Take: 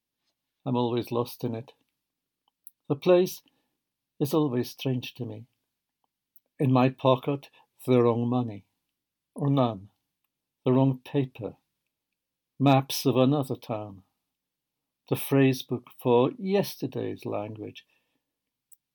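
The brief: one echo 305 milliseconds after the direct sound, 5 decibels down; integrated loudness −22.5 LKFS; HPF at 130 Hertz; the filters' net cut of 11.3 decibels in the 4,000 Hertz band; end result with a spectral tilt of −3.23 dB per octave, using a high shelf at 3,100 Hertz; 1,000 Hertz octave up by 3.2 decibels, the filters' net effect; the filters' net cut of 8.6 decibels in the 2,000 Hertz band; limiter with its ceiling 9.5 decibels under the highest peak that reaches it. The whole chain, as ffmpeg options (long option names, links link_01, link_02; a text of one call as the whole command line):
ffmpeg -i in.wav -af "highpass=130,equalizer=frequency=1000:width_type=o:gain=6.5,equalizer=frequency=2000:width_type=o:gain=-7.5,highshelf=frequency=3100:gain=-6.5,equalizer=frequency=4000:width_type=o:gain=-7.5,alimiter=limit=-15.5dB:level=0:latency=1,aecho=1:1:305:0.562,volume=6.5dB" out.wav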